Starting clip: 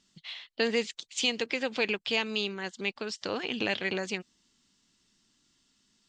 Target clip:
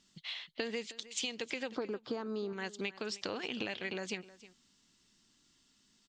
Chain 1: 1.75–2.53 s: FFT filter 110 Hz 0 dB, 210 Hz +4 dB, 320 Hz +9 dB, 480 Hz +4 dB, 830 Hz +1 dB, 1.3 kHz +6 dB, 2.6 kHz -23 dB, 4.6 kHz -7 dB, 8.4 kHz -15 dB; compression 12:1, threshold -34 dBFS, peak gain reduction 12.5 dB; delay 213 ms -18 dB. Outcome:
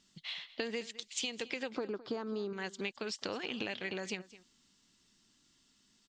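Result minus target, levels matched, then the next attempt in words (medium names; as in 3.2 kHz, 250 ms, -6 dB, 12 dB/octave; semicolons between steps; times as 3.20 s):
echo 100 ms early
1.75–2.53 s: FFT filter 110 Hz 0 dB, 210 Hz +4 dB, 320 Hz +9 dB, 480 Hz +4 dB, 830 Hz +1 dB, 1.3 kHz +6 dB, 2.6 kHz -23 dB, 4.6 kHz -7 dB, 8.4 kHz -15 dB; compression 12:1, threshold -34 dBFS, peak gain reduction 12.5 dB; delay 313 ms -18 dB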